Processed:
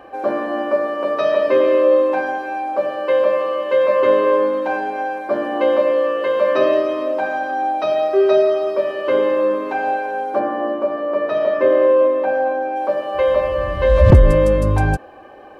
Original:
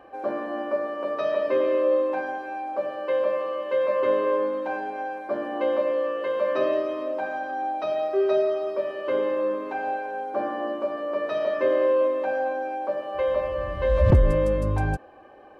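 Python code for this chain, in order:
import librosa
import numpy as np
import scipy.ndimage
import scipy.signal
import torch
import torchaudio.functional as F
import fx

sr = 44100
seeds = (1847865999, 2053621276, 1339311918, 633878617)

y = fx.high_shelf(x, sr, hz=3000.0, db=fx.steps((0.0, 3.0), (10.38, -9.0), (12.75, 3.5)))
y = F.gain(torch.from_numpy(y), 8.0).numpy()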